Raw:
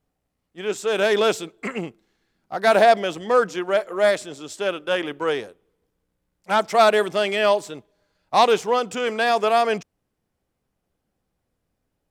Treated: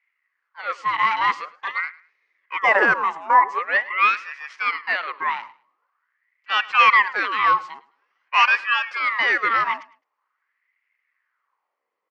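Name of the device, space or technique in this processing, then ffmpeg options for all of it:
voice changer toy: -filter_complex "[0:a]aeval=exprs='val(0)*sin(2*PI*1300*n/s+1300*0.65/0.46*sin(2*PI*0.46*n/s))':c=same,highpass=560,equalizer=f=670:t=q:w=4:g=-7,equalizer=f=1100:t=q:w=4:g=8,equalizer=f=2000:t=q:w=4:g=9,equalizer=f=3700:t=q:w=4:g=-8,lowpass=f=4500:w=0.5412,lowpass=f=4500:w=1.3066,asettb=1/sr,asplit=3[s0][s1][s2];[s0]atrim=end=2.594[s3];[s1]atrim=start=2.59:end=3.59,asetpts=PTS-STARTPTS,afade=t=in:d=0.004:c=qsin,afade=t=out:st=0.996:d=0.004:c=qsin,equalizer=f=125:t=o:w=1:g=3,equalizer=f=500:t=o:w=1:g=8,equalizer=f=1000:t=o:w=1:g=5,equalizer=f=2000:t=o:w=1:g=-4,equalizer=f=4000:t=o:w=1:g=-10,equalizer=f=8000:t=o:w=1:g=8[s4];[s2]atrim=start=3.586[s5];[s3][s4]acrossfade=d=0.004:c1=hsin:c2=qsin[s6];[s6][s5]acrossfade=d=0.004:c1=qsin:c2=hsin,aecho=1:1:106|212:0.0944|0.0236"

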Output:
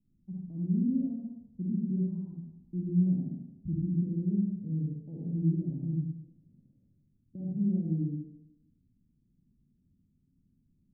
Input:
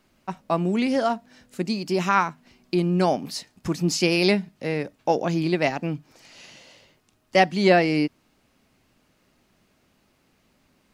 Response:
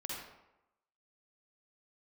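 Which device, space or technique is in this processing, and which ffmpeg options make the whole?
club heard from the street: -filter_complex "[0:a]alimiter=limit=0.211:level=0:latency=1,lowpass=f=210:w=0.5412,lowpass=f=210:w=1.3066[s0];[1:a]atrim=start_sample=2205[s1];[s0][s1]afir=irnorm=-1:irlink=0"

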